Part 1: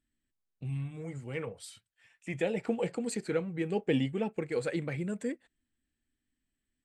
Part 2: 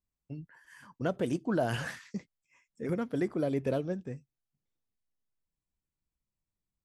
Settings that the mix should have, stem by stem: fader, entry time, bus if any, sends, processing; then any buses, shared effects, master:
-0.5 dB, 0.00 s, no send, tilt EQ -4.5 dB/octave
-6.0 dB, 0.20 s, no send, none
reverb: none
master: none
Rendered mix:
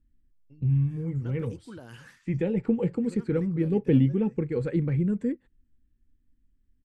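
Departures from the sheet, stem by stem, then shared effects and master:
stem 2 -6.0 dB -> -12.5 dB; master: extra peaking EQ 670 Hz -13.5 dB 0.35 oct

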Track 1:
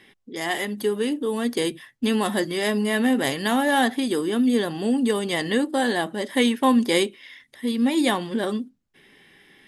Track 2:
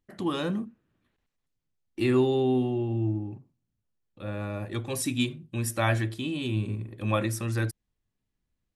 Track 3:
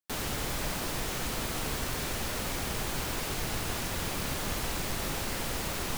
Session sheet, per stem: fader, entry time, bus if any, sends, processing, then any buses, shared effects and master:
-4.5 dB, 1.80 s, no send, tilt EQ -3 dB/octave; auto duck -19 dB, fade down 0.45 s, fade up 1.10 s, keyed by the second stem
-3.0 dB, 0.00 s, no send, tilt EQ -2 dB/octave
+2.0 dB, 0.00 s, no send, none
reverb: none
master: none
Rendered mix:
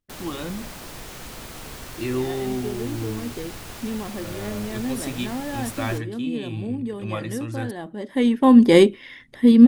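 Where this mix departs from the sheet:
stem 1 -4.5 dB -> +6.0 dB; stem 2: missing tilt EQ -2 dB/octave; stem 3 +2.0 dB -> -4.5 dB

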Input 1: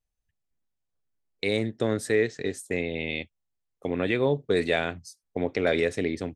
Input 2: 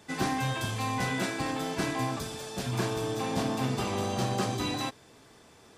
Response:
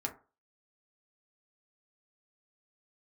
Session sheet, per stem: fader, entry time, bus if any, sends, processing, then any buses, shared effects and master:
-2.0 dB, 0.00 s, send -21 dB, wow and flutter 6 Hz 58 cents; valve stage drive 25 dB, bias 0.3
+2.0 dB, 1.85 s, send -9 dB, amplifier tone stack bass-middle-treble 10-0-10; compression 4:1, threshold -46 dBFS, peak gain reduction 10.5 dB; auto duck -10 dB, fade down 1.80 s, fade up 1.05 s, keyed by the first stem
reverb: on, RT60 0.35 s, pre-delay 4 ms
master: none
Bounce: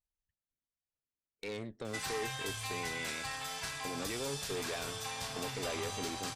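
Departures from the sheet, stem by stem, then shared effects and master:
stem 1 -2.0 dB -> -10.5 dB; stem 2 +2.0 dB -> +11.0 dB

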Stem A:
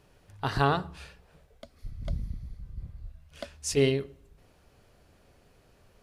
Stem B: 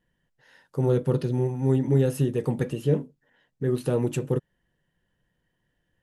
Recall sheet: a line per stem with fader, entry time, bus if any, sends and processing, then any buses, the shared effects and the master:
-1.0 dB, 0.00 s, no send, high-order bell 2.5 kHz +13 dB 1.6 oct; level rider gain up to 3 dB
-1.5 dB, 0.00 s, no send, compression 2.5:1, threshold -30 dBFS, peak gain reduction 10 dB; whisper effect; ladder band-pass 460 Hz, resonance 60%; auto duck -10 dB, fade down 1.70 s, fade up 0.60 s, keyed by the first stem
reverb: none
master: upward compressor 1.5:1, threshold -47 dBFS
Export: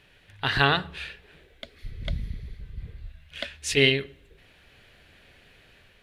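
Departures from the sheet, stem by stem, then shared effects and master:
stem B -1.5 dB -> -12.5 dB; master: missing upward compressor 1.5:1, threshold -47 dBFS

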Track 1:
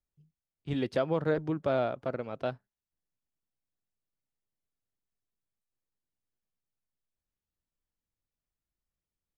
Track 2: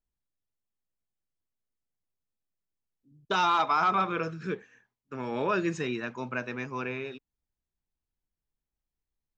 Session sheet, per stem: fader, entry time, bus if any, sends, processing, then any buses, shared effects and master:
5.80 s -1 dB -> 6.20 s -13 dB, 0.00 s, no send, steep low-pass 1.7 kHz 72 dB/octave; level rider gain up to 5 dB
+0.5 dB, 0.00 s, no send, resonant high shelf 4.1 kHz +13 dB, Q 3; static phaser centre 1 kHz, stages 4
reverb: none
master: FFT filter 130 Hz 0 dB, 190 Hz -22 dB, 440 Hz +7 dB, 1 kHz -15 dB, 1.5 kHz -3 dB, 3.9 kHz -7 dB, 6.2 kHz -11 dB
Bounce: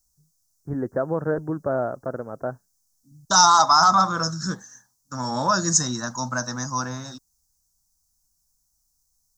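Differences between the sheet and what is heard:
stem 2 +0.5 dB -> +11.0 dB; master: missing FFT filter 130 Hz 0 dB, 190 Hz -22 dB, 440 Hz +7 dB, 1 kHz -15 dB, 1.5 kHz -3 dB, 3.9 kHz -7 dB, 6.2 kHz -11 dB

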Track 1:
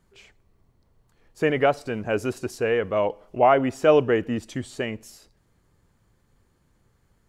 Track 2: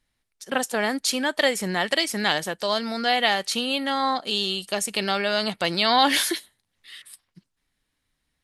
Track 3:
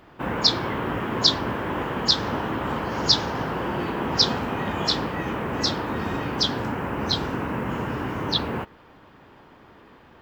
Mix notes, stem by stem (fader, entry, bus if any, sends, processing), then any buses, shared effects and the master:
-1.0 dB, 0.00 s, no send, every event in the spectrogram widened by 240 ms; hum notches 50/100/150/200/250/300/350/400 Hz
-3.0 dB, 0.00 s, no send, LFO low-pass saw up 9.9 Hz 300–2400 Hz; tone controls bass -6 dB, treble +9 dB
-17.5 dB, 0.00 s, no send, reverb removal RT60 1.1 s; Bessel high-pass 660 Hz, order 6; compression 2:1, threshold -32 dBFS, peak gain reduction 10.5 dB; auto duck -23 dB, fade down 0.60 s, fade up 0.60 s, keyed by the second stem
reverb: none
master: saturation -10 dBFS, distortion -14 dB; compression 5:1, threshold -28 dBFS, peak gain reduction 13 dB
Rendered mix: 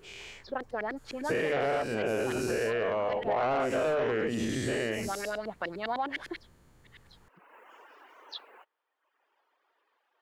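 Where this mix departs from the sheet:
stem 2 -3.0 dB -> -11.0 dB; stem 3: missing compression 2:1, threshold -32 dBFS, peak gain reduction 10.5 dB

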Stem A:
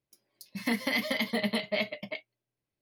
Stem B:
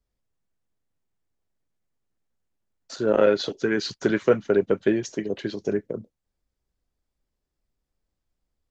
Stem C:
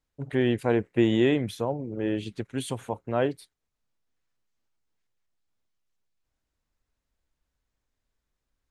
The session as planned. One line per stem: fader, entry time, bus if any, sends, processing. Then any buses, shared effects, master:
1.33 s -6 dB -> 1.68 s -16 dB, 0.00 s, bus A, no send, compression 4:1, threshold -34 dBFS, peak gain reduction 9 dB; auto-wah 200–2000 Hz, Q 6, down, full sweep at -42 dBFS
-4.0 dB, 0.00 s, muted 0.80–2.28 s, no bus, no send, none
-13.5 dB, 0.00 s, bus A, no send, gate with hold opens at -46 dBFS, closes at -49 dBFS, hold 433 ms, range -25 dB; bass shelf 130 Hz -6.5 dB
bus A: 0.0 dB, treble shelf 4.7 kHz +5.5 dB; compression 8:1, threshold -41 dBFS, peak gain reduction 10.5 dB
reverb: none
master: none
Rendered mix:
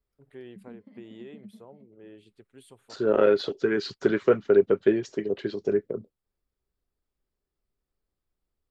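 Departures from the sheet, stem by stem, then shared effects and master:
stem A: missing compression 4:1, threshold -34 dBFS, peak gain reduction 9 dB; stem C -13.5 dB -> -21.5 dB; master: extra graphic EQ with 31 bands 400 Hz +7 dB, 1.25 kHz +4 dB, 6.3 kHz -9 dB

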